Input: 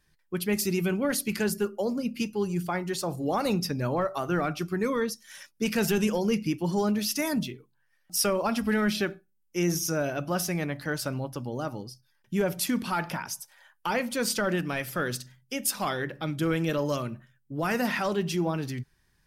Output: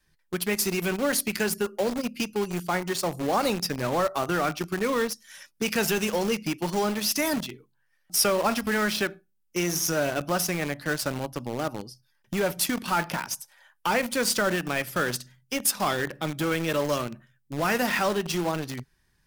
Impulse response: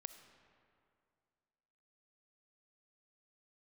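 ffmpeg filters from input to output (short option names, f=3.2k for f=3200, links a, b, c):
-filter_complex "[0:a]adynamicequalizer=threshold=0.00398:dfrequency=110:dqfactor=2.5:tfrequency=110:tqfactor=2.5:attack=5:release=100:ratio=0.375:range=3:mode=cutabove:tftype=bell,acrossover=split=470|3000[a][b][c];[a]acompressor=threshold=-32dB:ratio=6[d];[d][b][c]amix=inputs=3:normalize=0,asplit=2[e][f];[f]acrusher=bits=4:mix=0:aa=0.000001,volume=-5dB[g];[e][g]amix=inputs=2:normalize=0"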